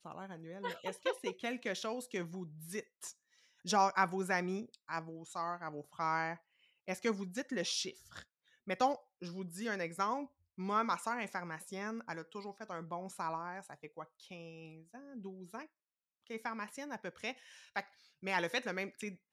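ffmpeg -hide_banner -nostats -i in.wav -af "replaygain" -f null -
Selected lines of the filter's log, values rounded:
track_gain = +18.1 dB
track_peak = 0.120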